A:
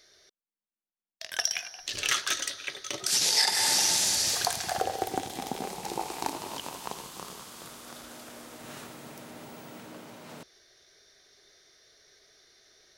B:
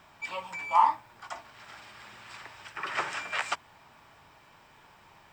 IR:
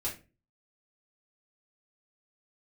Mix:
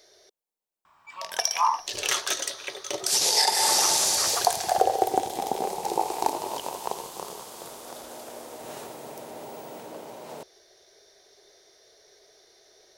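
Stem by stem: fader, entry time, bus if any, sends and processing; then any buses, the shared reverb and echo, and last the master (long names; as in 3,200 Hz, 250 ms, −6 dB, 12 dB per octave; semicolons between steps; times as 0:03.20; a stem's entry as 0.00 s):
−2.0 dB, 0.00 s, no send, flat-topped bell 590 Hz +10.5 dB
−12.5 dB, 0.85 s, no send, parametric band 1,100 Hz +14.5 dB 0.76 octaves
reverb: not used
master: high-shelf EQ 4,400 Hz +6.5 dB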